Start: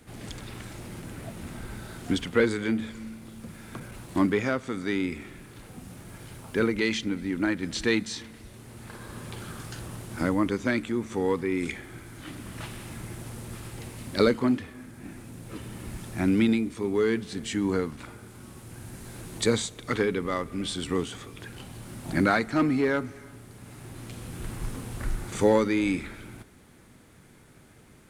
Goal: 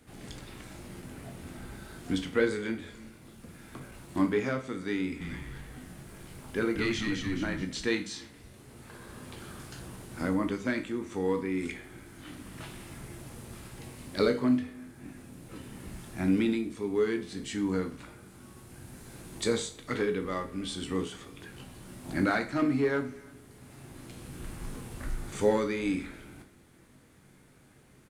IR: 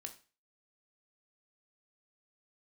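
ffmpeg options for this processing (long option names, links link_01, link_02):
-filter_complex "[0:a]asplit=3[link_01][link_02][link_03];[link_01]afade=type=out:start_time=5.2:duration=0.02[link_04];[link_02]asplit=7[link_05][link_06][link_07][link_08][link_09][link_10][link_11];[link_06]adelay=214,afreqshift=-110,volume=-4dB[link_12];[link_07]adelay=428,afreqshift=-220,volume=-10dB[link_13];[link_08]adelay=642,afreqshift=-330,volume=-16dB[link_14];[link_09]adelay=856,afreqshift=-440,volume=-22.1dB[link_15];[link_10]adelay=1070,afreqshift=-550,volume=-28.1dB[link_16];[link_11]adelay=1284,afreqshift=-660,volume=-34.1dB[link_17];[link_05][link_12][link_13][link_14][link_15][link_16][link_17]amix=inputs=7:normalize=0,afade=type=in:start_time=5.2:duration=0.02,afade=type=out:start_time=7.63:duration=0.02[link_18];[link_03]afade=type=in:start_time=7.63:duration=0.02[link_19];[link_04][link_18][link_19]amix=inputs=3:normalize=0[link_20];[1:a]atrim=start_sample=2205[link_21];[link_20][link_21]afir=irnorm=-1:irlink=0"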